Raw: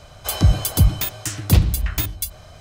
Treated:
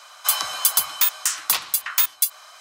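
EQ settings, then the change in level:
high-pass with resonance 1,100 Hz, resonance Q 2.7
high-shelf EQ 2,900 Hz +9.5 dB
−2.5 dB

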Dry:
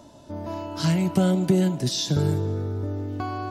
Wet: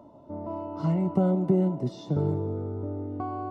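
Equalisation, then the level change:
Savitzky-Golay smoothing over 65 samples
low-shelf EQ 89 Hz −11.5 dB
−1.0 dB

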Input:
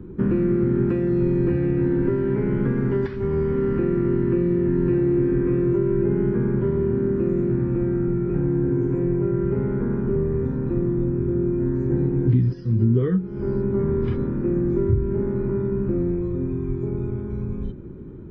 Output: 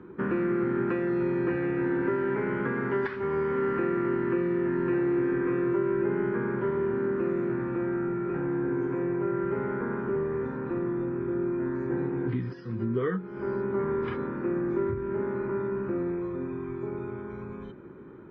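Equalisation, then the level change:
resonant band-pass 1,400 Hz, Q 1
+6.5 dB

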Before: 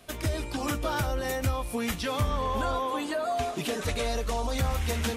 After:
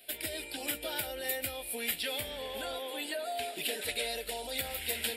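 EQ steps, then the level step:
bass and treble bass −14 dB, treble +9 dB
low-shelf EQ 360 Hz −9.5 dB
phaser with its sweep stopped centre 2,700 Hz, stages 4
0.0 dB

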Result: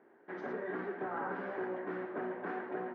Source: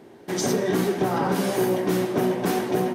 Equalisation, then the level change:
high-pass filter 280 Hz 12 dB per octave
transistor ladder low-pass 1,900 Hz, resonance 50%
−5.5 dB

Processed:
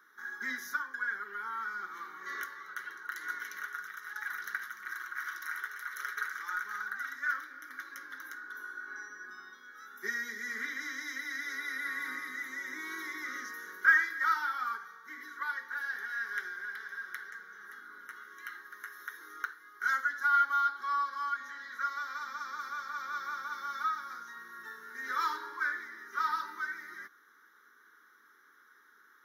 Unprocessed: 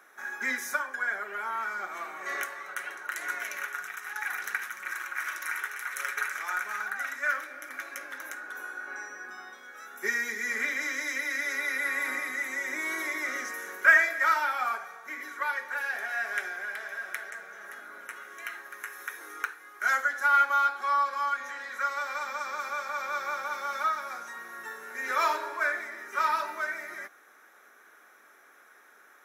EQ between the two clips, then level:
parametric band 630 Hz −12 dB 0.3 octaves
phaser with its sweep stopped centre 2,500 Hz, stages 6
−3.5 dB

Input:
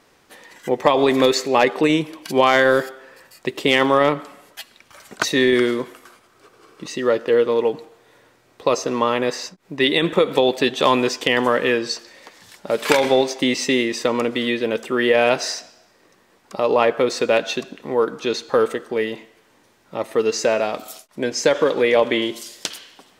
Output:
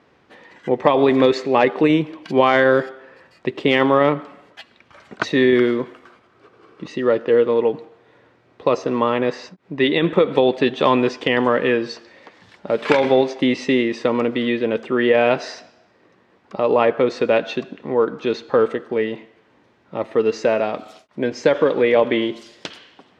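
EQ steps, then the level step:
high-pass filter 65 Hz
low-pass filter 3,200 Hz 12 dB per octave
low-shelf EQ 410 Hz +5 dB
−1.0 dB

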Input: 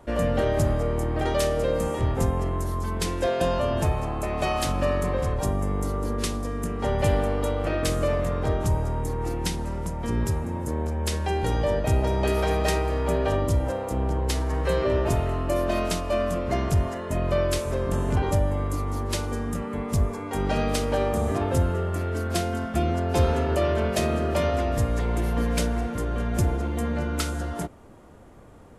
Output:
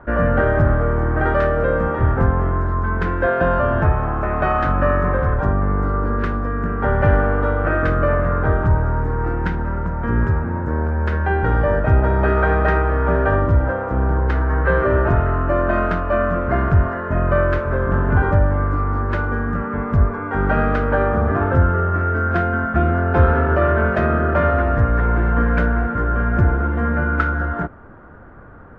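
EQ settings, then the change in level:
low-pass with resonance 1,500 Hz, resonance Q 5.3
high-frequency loss of the air 53 metres
low-shelf EQ 210 Hz +5 dB
+3.5 dB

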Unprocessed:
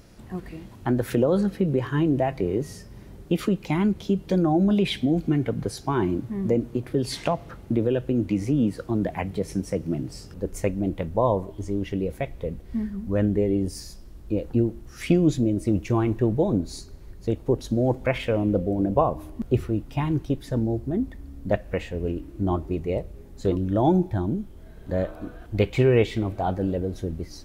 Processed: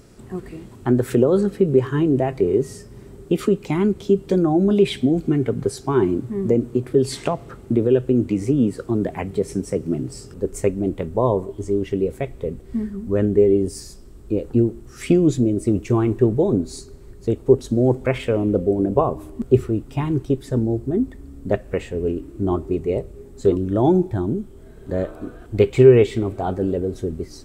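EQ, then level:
thirty-one-band graphic EQ 125 Hz +5 dB, 250 Hz +5 dB, 400 Hz +11 dB, 1,250 Hz +4 dB, 8,000 Hz +10 dB
0.0 dB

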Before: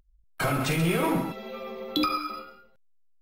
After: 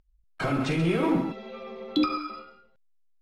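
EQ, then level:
low-pass filter 5,600 Hz 12 dB per octave
dynamic equaliser 290 Hz, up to +7 dB, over −40 dBFS, Q 1.2
−3.0 dB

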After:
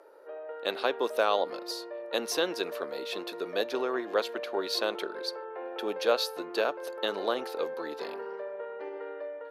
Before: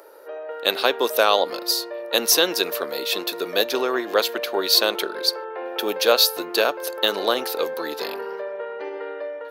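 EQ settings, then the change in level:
low-pass filter 12,000 Hz 24 dB per octave
high-shelf EQ 3,100 Hz −11.5 dB
−7.0 dB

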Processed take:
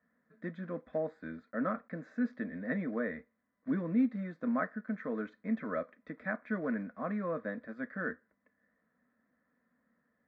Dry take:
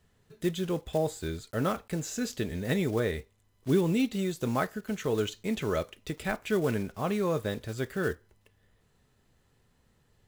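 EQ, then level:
loudspeaker in its box 170–2,600 Hz, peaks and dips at 240 Hz +7 dB, 920 Hz +7 dB, 1,800 Hz +6 dB
phaser with its sweep stopped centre 580 Hz, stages 8
−4.5 dB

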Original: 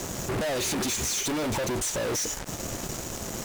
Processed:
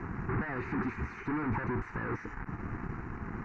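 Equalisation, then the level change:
low-pass filter 2,200 Hz 24 dB per octave
phaser with its sweep stopped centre 1,400 Hz, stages 4
0.0 dB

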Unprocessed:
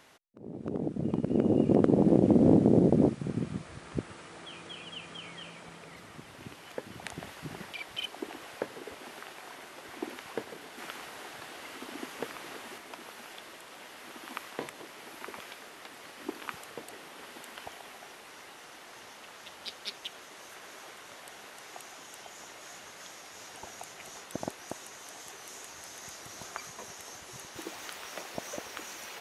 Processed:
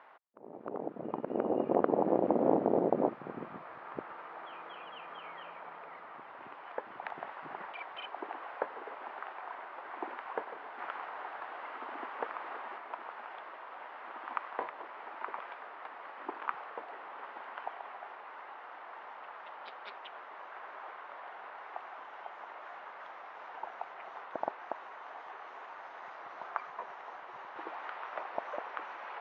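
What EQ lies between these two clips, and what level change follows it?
four-pole ladder band-pass 1,200 Hz, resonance 30%
high-frequency loss of the air 190 metres
spectral tilt −3 dB per octave
+16.5 dB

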